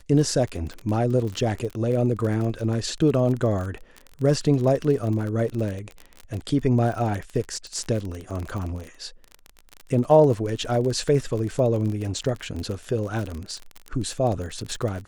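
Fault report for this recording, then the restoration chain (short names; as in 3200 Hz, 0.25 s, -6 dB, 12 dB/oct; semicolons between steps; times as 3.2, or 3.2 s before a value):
crackle 34/s -28 dBFS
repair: de-click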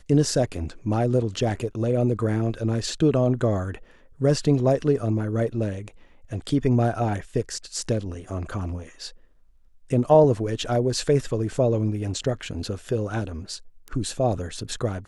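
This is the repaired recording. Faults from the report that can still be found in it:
none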